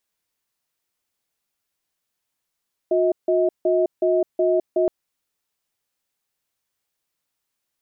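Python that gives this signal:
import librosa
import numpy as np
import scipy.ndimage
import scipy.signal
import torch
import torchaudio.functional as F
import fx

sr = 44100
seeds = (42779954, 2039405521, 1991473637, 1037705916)

y = fx.cadence(sr, length_s=1.97, low_hz=361.0, high_hz=637.0, on_s=0.21, off_s=0.16, level_db=-18.5)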